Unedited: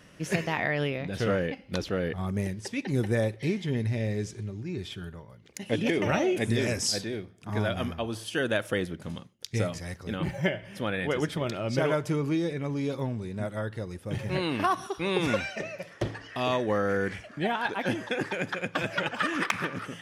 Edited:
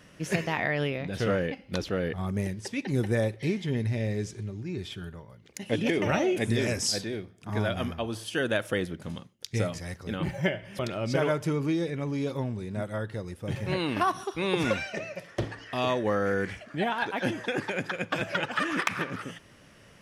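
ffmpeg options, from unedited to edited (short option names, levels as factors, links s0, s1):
-filter_complex "[0:a]asplit=2[s0][s1];[s0]atrim=end=10.792[s2];[s1]atrim=start=11.418[s3];[s2][s3]acrossfade=d=0.004:c1=hsin:c2=hsin"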